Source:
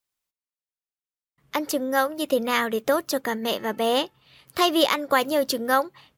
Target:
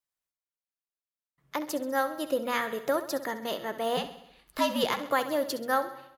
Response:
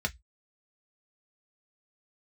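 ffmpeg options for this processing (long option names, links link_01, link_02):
-filter_complex "[0:a]asplit=3[link_01][link_02][link_03];[link_01]afade=type=out:start_time=3.96:duration=0.02[link_04];[link_02]afreqshift=-89,afade=type=in:start_time=3.96:duration=0.02,afade=type=out:start_time=4.99:duration=0.02[link_05];[link_03]afade=type=in:start_time=4.99:duration=0.02[link_06];[link_04][link_05][link_06]amix=inputs=3:normalize=0,aecho=1:1:66|132|198|264|330|396:0.224|0.13|0.0753|0.0437|0.0253|0.0147,asplit=2[link_07][link_08];[1:a]atrim=start_sample=2205[link_09];[link_08][link_09]afir=irnorm=-1:irlink=0,volume=-16.5dB[link_10];[link_07][link_10]amix=inputs=2:normalize=0,volume=-7dB"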